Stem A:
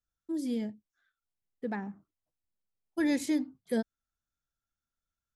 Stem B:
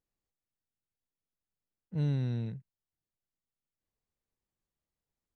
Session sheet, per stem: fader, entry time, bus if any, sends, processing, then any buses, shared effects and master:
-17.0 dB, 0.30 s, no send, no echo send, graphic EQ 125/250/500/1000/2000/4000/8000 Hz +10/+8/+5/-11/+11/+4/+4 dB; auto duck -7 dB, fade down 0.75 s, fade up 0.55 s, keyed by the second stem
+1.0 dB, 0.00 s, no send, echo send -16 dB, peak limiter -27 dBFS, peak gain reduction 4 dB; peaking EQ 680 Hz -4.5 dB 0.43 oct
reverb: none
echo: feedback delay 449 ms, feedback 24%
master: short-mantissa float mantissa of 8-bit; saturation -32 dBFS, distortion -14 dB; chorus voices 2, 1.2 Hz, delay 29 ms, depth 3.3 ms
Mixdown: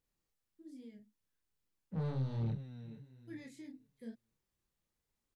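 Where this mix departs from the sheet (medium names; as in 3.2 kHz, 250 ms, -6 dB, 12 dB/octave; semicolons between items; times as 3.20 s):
stem A -17.0 dB -> -24.0 dB; stem B +1.0 dB -> +7.0 dB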